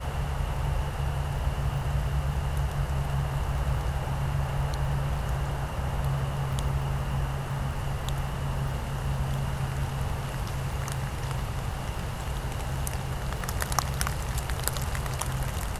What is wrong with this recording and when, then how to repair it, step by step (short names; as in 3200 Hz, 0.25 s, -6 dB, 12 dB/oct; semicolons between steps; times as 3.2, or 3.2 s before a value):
crackle 24/s -37 dBFS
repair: de-click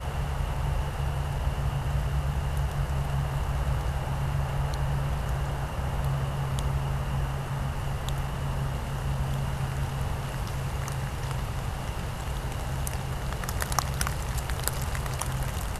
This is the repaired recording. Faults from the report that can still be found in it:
none